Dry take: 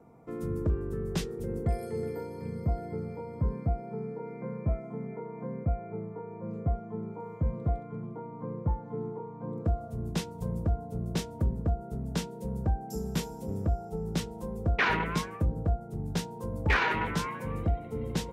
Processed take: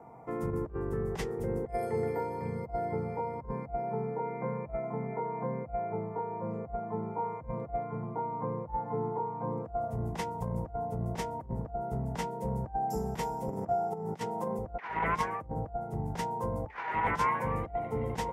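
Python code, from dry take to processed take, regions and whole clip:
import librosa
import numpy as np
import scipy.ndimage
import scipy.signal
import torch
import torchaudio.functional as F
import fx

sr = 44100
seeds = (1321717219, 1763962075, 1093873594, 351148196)

y = fx.chain(x, sr, fx.highpass(hz=130.0, slope=24),
    fx.over_compress(threshold_db=-37.0, ratio=-0.5), at=(13.49, 14.59))
y = fx.graphic_eq_31(y, sr, hz=(125, 2000, 4000), db=(6, 8, -5))
y = fx.over_compress(y, sr, threshold_db=-31.0, ratio=-0.5)
y = fx.peak_eq(y, sr, hz=840.0, db=14.5, octaves=1.2)
y = y * 10.0 ** (-4.5 / 20.0)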